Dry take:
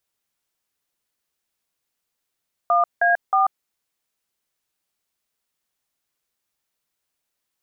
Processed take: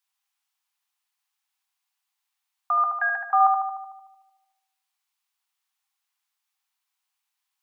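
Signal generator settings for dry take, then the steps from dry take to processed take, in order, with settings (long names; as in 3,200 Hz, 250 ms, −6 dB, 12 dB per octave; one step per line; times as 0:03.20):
touch tones "1A4", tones 139 ms, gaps 175 ms, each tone −17 dBFS
Chebyshev high-pass with heavy ripple 750 Hz, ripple 3 dB
on a send: feedback echo with a low-pass in the loop 75 ms, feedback 69%, low-pass 1,700 Hz, level −3.5 dB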